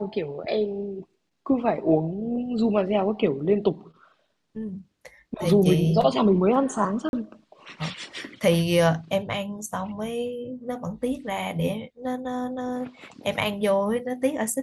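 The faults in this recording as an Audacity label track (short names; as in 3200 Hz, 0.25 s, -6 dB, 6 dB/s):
7.090000	7.130000	gap 41 ms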